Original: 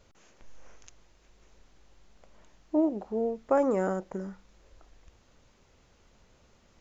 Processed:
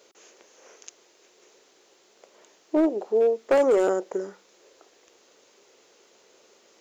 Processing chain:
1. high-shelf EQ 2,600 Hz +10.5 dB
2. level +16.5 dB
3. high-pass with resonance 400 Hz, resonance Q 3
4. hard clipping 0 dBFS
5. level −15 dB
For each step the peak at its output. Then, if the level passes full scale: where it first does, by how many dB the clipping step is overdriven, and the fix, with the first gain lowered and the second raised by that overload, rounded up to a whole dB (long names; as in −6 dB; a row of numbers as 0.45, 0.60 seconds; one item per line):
−11.5, +5.0, +7.5, 0.0, −15.0 dBFS
step 2, 7.5 dB
step 2 +8.5 dB, step 5 −7 dB